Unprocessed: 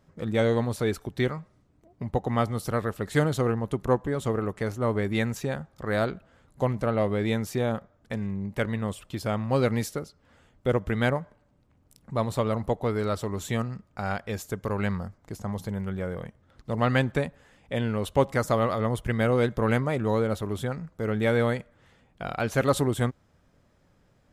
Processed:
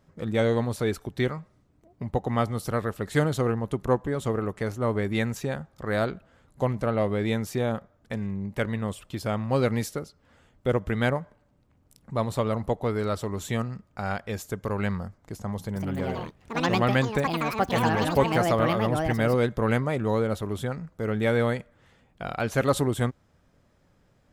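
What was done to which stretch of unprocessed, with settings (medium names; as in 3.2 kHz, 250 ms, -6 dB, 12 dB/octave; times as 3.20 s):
15.57–20.64 s: ever faster or slower copies 186 ms, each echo +6 st, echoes 2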